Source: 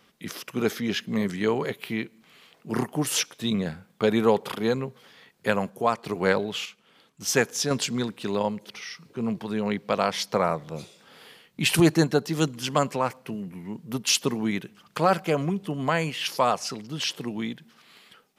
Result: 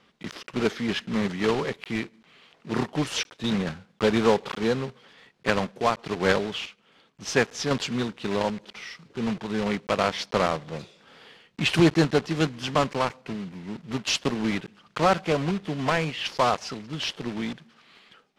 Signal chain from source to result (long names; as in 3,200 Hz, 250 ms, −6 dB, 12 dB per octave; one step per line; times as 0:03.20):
one scale factor per block 3 bits
low-pass filter 4,500 Hz 12 dB per octave